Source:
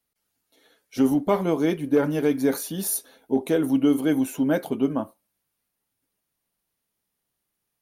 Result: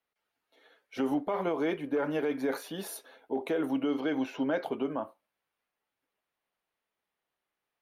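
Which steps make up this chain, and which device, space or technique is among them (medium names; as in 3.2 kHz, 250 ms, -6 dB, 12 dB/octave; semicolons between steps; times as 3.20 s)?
DJ mixer with the lows and highs turned down (three-band isolator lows -14 dB, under 390 Hz, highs -18 dB, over 3.4 kHz; peak limiter -22.5 dBFS, peak gain reduction 11.5 dB); 3.88–4.64 s: resonant high shelf 6.8 kHz -10 dB, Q 3; trim +1 dB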